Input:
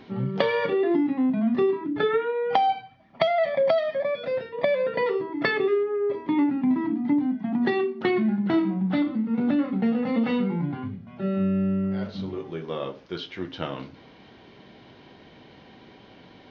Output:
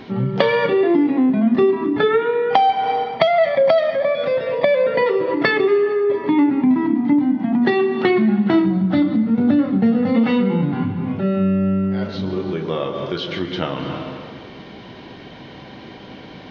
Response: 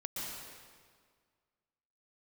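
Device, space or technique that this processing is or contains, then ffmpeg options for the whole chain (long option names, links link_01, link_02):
ducked reverb: -filter_complex "[0:a]asplit=3[link_01][link_02][link_03];[1:a]atrim=start_sample=2205[link_04];[link_02][link_04]afir=irnorm=-1:irlink=0[link_05];[link_03]apad=whole_len=728051[link_06];[link_05][link_06]sidechaincompress=threshold=-34dB:ratio=10:attack=5.9:release=170,volume=-0.5dB[link_07];[link_01][link_07]amix=inputs=2:normalize=0,asettb=1/sr,asplit=3[link_08][link_09][link_10];[link_08]atrim=end=8.664[link_11];[link_09]atrim=start=8.66:end=10.15,asetpts=PTS-STARTPTS,afade=type=in:duration=0.004:curve=qsin,afade=type=out:start_time=1.486:duration=0.004:curve=qsin,equalizer=frequency=100:width_type=o:width=0.67:gain=10,equalizer=frequency=1000:width_type=o:width=0.67:gain=-4,equalizer=frequency=2500:width_type=o:width=0.67:gain=-6[link_12];[link_10]atrim=start=10.146[link_13];[link_11][link_12]acrossfade=duration=0.004:curve1=hsin:curve2=qsin[link_14];[link_14][link_13]acrossfade=duration=0.004:curve1=qsin:curve2=hsin,volume=6dB"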